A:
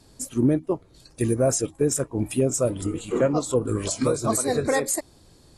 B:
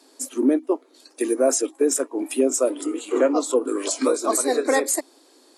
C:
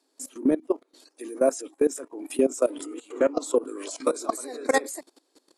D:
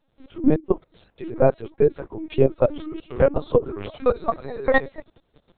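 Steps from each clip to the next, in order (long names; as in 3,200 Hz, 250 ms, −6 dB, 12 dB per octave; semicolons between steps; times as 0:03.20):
Chebyshev high-pass filter 260 Hz, order 6; level +3.5 dB
output level in coarse steps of 18 dB
linear-prediction vocoder at 8 kHz pitch kept; level +5 dB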